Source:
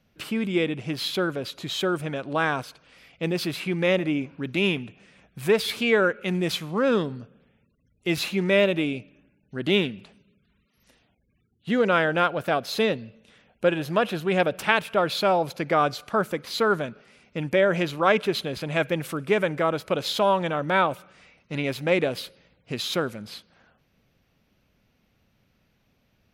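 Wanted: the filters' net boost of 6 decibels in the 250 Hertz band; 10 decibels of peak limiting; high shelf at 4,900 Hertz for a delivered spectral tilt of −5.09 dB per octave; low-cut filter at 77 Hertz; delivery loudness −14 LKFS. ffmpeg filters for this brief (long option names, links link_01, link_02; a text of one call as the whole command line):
ffmpeg -i in.wav -af "highpass=77,equalizer=frequency=250:width_type=o:gain=8.5,highshelf=frequency=4900:gain=7.5,volume=10dB,alimiter=limit=-1.5dB:level=0:latency=1" out.wav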